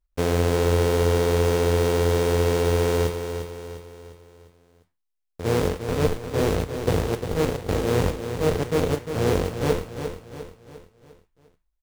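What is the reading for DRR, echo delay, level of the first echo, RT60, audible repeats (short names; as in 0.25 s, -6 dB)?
none, 0.351 s, -8.5 dB, none, 4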